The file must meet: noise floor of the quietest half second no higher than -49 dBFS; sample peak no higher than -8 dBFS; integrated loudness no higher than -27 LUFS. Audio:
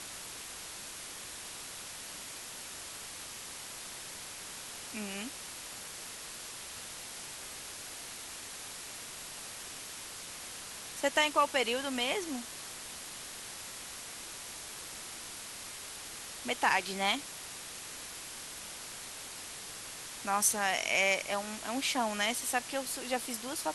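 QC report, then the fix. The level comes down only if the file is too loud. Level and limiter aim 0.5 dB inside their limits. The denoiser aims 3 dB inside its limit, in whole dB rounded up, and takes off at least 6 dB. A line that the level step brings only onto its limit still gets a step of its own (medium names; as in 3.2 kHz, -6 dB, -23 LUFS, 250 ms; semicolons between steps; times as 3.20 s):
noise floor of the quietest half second -45 dBFS: fail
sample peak -13.0 dBFS: pass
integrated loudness -36.0 LUFS: pass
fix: noise reduction 7 dB, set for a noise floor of -45 dBFS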